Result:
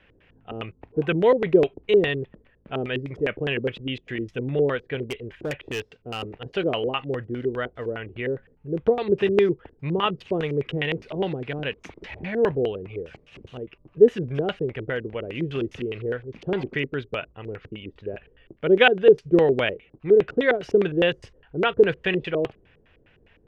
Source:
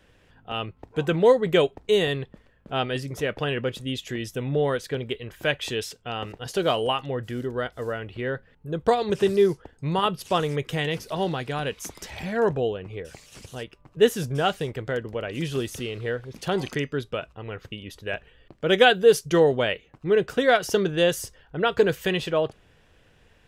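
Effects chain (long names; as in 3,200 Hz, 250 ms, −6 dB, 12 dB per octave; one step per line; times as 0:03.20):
auto-filter low-pass square 4.9 Hz 390–2,500 Hz
0:05.02–0:06.34: gain into a clipping stage and back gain 22.5 dB
level −1.5 dB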